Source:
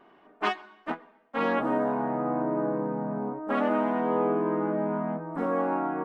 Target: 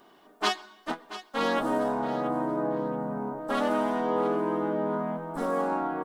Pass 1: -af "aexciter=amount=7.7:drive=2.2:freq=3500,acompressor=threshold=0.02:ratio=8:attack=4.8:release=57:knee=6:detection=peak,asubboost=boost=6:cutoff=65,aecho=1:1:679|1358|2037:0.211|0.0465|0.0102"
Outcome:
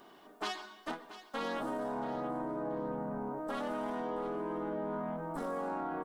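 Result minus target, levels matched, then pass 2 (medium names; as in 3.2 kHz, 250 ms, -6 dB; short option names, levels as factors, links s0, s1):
compression: peak gain reduction +13.5 dB
-af "aexciter=amount=7.7:drive=2.2:freq=3500,asubboost=boost=6:cutoff=65,aecho=1:1:679|1358|2037:0.211|0.0465|0.0102"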